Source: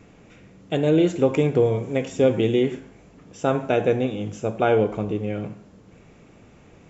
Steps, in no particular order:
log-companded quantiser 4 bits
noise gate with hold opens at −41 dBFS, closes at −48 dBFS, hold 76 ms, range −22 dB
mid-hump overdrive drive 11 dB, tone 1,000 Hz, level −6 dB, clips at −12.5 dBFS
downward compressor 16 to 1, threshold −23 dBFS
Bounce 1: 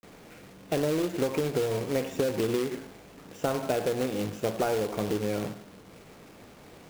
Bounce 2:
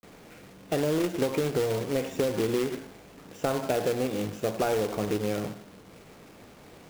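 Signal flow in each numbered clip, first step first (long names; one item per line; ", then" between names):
noise gate with hold, then mid-hump overdrive, then log-companded quantiser, then downward compressor
noise gate with hold, then mid-hump overdrive, then downward compressor, then log-companded quantiser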